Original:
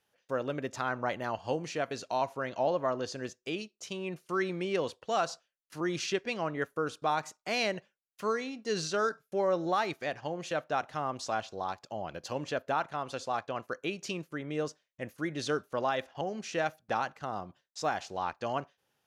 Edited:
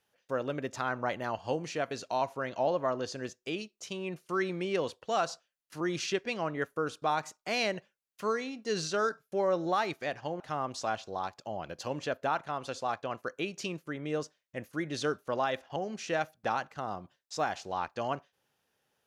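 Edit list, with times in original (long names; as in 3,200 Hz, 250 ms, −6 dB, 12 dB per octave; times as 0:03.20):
0:10.40–0:10.85: remove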